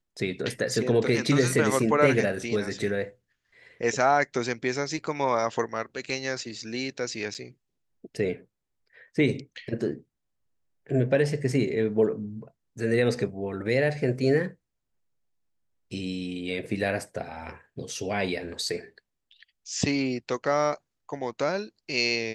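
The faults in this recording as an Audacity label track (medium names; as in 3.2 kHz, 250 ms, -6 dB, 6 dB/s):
7.340000	7.350000	dropout 8 ms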